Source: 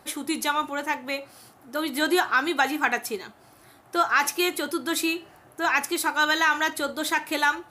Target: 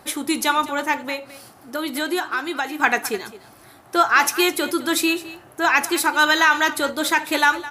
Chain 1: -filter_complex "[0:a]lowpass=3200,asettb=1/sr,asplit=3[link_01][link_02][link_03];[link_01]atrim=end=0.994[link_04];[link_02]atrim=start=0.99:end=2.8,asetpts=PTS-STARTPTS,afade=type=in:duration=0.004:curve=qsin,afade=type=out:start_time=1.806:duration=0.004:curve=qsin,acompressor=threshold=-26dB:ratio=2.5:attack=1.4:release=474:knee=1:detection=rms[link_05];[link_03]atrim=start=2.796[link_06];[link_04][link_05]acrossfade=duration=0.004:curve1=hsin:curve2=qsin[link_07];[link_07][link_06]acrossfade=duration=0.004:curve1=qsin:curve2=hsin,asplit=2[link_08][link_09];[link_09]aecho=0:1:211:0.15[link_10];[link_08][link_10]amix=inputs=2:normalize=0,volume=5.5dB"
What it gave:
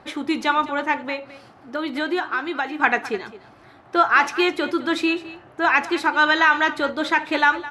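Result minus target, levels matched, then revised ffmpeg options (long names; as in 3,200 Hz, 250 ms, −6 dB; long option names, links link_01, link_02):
4,000 Hz band −3.5 dB
-filter_complex "[0:a]asettb=1/sr,asplit=3[link_01][link_02][link_03];[link_01]atrim=end=0.994[link_04];[link_02]atrim=start=0.99:end=2.8,asetpts=PTS-STARTPTS,afade=type=in:duration=0.004:curve=qsin,afade=type=out:start_time=1.806:duration=0.004:curve=qsin,acompressor=threshold=-26dB:ratio=2.5:attack=1.4:release=474:knee=1:detection=rms[link_05];[link_03]atrim=start=2.796[link_06];[link_04][link_05]acrossfade=duration=0.004:curve1=hsin:curve2=qsin[link_07];[link_07][link_06]acrossfade=duration=0.004:curve1=qsin:curve2=hsin,asplit=2[link_08][link_09];[link_09]aecho=0:1:211:0.15[link_10];[link_08][link_10]amix=inputs=2:normalize=0,volume=5.5dB"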